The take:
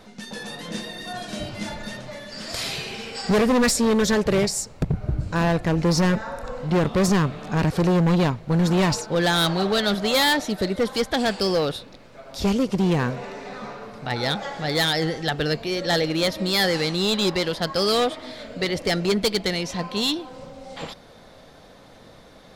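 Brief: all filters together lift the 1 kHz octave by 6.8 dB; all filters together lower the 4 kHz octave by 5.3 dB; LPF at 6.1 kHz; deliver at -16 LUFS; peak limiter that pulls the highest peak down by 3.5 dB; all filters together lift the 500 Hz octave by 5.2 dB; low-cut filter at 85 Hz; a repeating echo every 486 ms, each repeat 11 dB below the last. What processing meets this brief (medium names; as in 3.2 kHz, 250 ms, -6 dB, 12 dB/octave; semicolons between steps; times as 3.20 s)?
high-pass 85 Hz; low-pass 6.1 kHz; peaking EQ 500 Hz +4.5 dB; peaking EQ 1 kHz +7.5 dB; peaking EQ 4 kHz -6 dB; peak limiter -9.5 dBFS; feedback delay 486 ms, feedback 28%, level -11 dB; trim +5.5 dB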